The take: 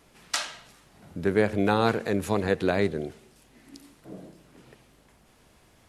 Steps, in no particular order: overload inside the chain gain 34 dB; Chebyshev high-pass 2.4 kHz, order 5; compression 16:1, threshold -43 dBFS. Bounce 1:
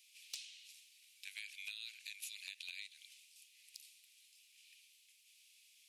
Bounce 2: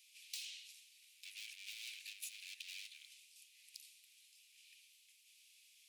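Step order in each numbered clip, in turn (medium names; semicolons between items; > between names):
Chebyshev high-pass > compression > overload inside the chain; overload inside the chain > Chebyshev high-pass > compression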